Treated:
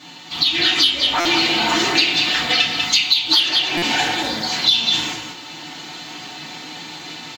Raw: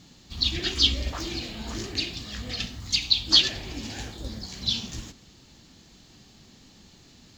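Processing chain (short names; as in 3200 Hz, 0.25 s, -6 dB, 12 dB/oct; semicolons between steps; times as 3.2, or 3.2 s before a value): HPF 200 Hz 12 dB/oct; band shelf 1600 Hz +9 dB 2.9 oct; on a send: echo 0.194 s -8.5 dB; on the sum: FDN reverb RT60 0.31 s, low-frequency decay 0.9×, high-frequency decay 0.8×, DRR -6 dB; in parallel at -4.5 dB: soft clip -4.5 dBFS, distortion -10 dB; on the sum: compressor 5:1, threshold -16 dBFS, peak gain reduction 16 dB; comb 5.4 ms, depth 33%; AGC gain up to 6 dB; stuck buffer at 1.2/3.77, samples 256, times 8; gain -1 dB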